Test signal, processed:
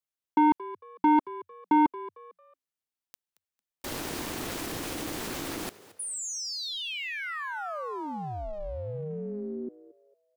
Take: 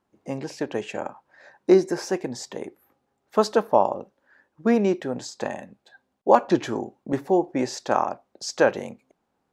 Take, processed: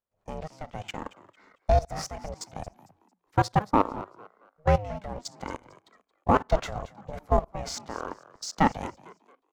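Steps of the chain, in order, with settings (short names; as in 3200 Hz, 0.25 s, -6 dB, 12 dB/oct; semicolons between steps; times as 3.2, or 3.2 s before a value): level quantiser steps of 18 dB; sample leveller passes 1; ring modulator 310 Hz; on a send: frequency-shifting echo 0.225 s, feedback 31%, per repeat +87 Hz, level -18 dB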